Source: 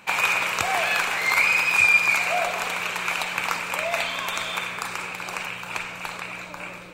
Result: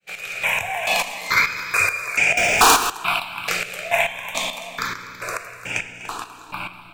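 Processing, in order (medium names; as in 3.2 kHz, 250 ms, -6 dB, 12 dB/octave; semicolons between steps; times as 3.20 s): fade-in on the opening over 0.50 s; two-band feedback delay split 840 Hz, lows 744 ms, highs 247 ms, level -9.5 dB; simulated room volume 57 m³, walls mixed, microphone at 0.33 m; in parallel at -9 dB: saturation -14 dBFS, distortion -16 dB; 2.37–2.90 s: on the sum: waveshaping leveller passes 5; square tremolo 2.3 Hz, depth 65%, duty 35%; stepped phaser 2.3 Hz 260–4100 Hz; trim +4 dB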